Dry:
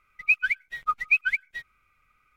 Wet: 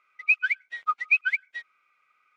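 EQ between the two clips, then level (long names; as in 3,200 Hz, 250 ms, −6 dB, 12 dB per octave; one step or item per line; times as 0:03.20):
band-pass filter 510–5,900 Hz
0.0 dB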